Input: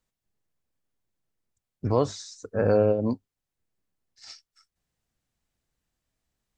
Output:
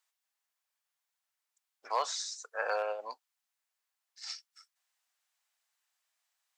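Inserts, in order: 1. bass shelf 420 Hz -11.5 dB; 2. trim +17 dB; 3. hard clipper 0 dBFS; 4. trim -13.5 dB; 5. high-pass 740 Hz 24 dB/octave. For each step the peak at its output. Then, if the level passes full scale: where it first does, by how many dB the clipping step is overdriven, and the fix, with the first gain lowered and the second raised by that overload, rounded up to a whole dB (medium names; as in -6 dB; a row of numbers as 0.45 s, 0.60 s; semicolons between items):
-14.0 dBFS, +3.0 dBFS, 0.0 dBFS, -13.5 dBFS, -18.5 dBFS; step 2, 3.0 dB; step 2 +14 dB, step 4 -10.5 dB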